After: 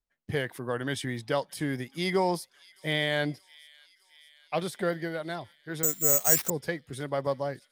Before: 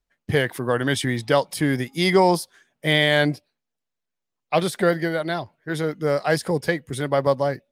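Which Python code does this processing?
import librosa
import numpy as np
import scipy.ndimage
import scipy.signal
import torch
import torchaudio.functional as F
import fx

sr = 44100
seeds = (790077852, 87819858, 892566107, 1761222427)

y = fx.echo_wet_highpass(x, sr, ms=617, feedback_pct=69, hz=2800.0, wet_db=-19)
y = fx.resample_bad(y, sr, factor=6, down='none', up='zero_stuff', at=(5.83, 6.5))
y = y * librosa.db_to_amplitude(-9.5)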